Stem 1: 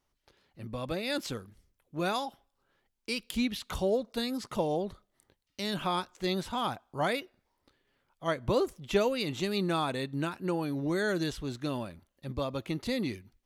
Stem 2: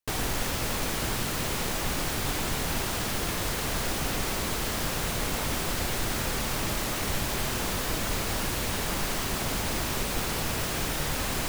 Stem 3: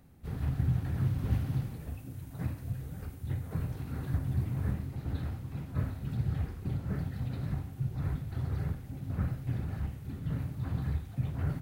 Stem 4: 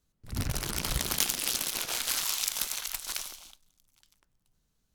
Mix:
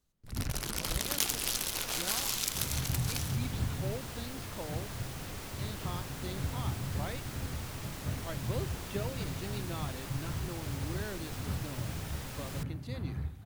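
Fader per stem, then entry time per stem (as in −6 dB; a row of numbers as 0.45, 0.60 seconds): −12.5, −14.0, −4.5, −3.0 decibels; 0.00, 1.15, 2.30, 0.00 seconds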